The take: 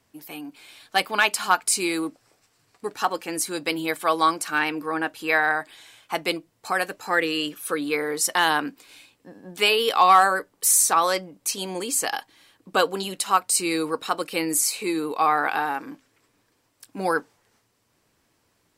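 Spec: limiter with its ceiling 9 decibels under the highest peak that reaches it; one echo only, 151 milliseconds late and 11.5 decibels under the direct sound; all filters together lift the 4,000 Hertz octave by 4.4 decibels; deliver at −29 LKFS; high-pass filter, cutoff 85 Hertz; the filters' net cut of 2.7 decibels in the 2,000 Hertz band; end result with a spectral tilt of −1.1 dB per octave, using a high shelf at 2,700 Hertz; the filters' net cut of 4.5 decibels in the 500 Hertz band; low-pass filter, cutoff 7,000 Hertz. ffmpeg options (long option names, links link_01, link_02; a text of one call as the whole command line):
ffmpeg -i in.wav -af "highpass=85,lowpass=7000,equalizer=frequency=500:width_type=o:gain=-5.5,equalizer=frequency=2000:width_type=o:gain=-6.5,highshelf=frequency=2700:gain=5,equalizer=frequency=4000:width_type=o:gain=4.5,alimiter=limit=-14dB:level=0:latency=1,aecho=1:1:151:0.266,volume=-2.5dB" out.wav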